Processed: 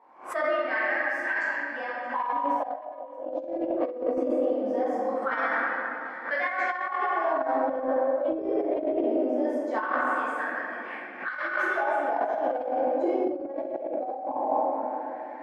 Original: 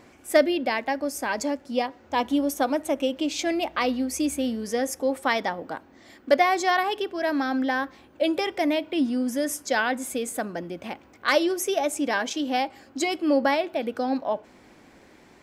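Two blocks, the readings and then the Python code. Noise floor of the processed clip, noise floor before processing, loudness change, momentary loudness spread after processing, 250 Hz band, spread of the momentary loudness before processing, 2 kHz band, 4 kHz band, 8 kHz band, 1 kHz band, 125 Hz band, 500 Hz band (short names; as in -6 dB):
-40 dBFS, -54 dBFS, -2.5 dB, 7 LU, -6.5 dB, 9 LU, +0.5 dB, under -15 dB, under -25 dB, -0.5 dB, under -10 dB, -1.0 dB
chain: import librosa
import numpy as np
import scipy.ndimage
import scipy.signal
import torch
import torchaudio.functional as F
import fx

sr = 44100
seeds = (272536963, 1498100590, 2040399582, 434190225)

y = scipy.signal.sosfilt(scipy.signal.butter(2, 180.0, 'highpass', fs=sr, output='sos'), x)
y = fx.wah_lfo(y, sr, hz=0.21, low_hz=440.0, high_hz=1800.0, q=6.3)
y = fx.high_shelf(y, sr, hz=5900.0, db=4.0)
y = fx.room_shoebox(y, sr, seeds[0], volume_m3=120.0, walls='hard', distance_m=1.6)
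y = fx.over_compress(y, sr, threshold_db=-26.0, ratio=-0.5)
y = fx.high_shelf(y, sr, hz=2400.0, db=-9.0)
y = y + 10.0 ** (-21.5 / 20.0) * np.pad(y, (int(624 * sr / 1000.0), 0))[:len(y)]
y = fx.pre_swell(y, sr, db_per_s=130.0)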